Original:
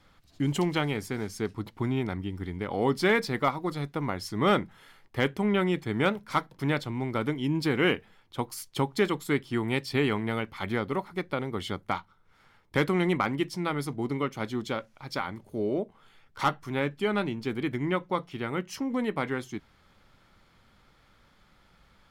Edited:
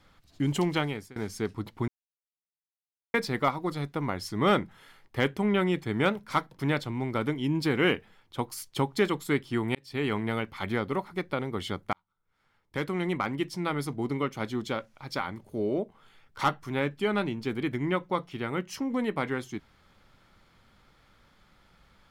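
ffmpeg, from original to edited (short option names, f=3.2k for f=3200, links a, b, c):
-filter_complex "[0:a]asplit=6[a][b][c][d][e][f];[a]atrim=end=1.16,asetpts=PTS-STARTPTS,afade=t=out:st=0.79:d=0.37:silence=0.0668344[g];[b]atrim=start=1.16:end=1.88,asetpts=PTS-STARTPTS,afade=t=in:d=0.004:c=hsin:silence=0.0668344,afade=t=out:st=0.716:d=0.004:c=hsin[h];[c]atrim=start=1.88:end=3.14,asetpts=PTS-STARTPTS,volume=0[i];[d]atrim=start=3.14:end=9.75,asetpts=PTS-STARTPTS,afade=t=in:d=0.004:c=hsin,afade=t=out:st=6.606:d=0.004:c=hsin[j];[e]atrim=start=9.75:end=11.93,asetpts=PTS-STARTPTS,afade=t=in:d=0.43,afade=t=out:st=2.176:d=0.004:c=hsin[k];[f]atrim=start=11.93,asetpts=PTS-STARTPTS,afade=t=in:d=1.8[l];[g][h][i][j][k][l]concat=n=6:v=0:a=1"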